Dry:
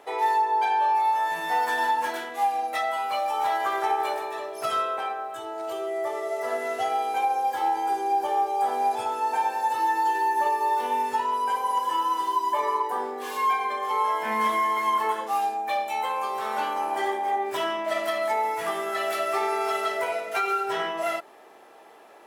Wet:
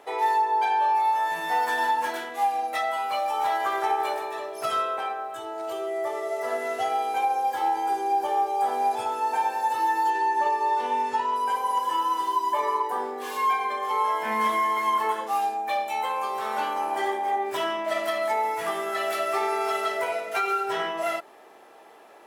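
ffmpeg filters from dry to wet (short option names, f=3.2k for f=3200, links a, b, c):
-filter_complex "[0:a]asettb=1/sr,asplit=3[a][b][c];[a]atrim=end=10.104[d];[b]atrim=start=10.1:end=11.36,asetpts=PTS-STARTPTS,afade=t=in:d=0.004:c=qsin,afade=t=out:st=1.256:d=0.004:c=qsin,lowpass=7.4k[e];[c]atrim=start=11.356[f];[d][e]acrossfade=d=0.004:c1=hsin:c2=qsin[g];[g][f]acrossfade=d=0.004:c1=qsin:c2=hsin"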